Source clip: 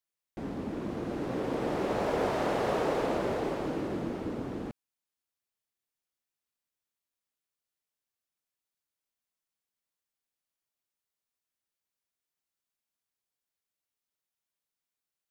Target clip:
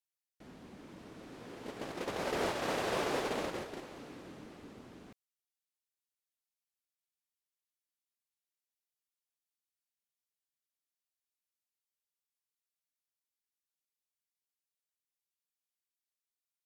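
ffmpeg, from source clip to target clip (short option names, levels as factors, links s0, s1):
-af "asetrate=40517,aresample=44100,agate=range=0.282:threshold=0.0355:ratio=16:detection=peak,tiltshelf=f=1400:g=-6.5"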